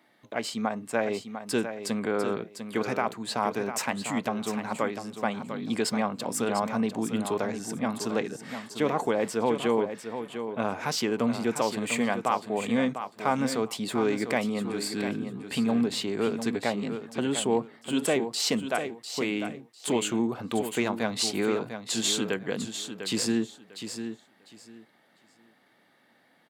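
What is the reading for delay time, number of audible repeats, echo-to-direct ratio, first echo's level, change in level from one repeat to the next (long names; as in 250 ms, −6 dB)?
699 ms, 2, −9.0 dB, −9.0 dB, −14.0 dB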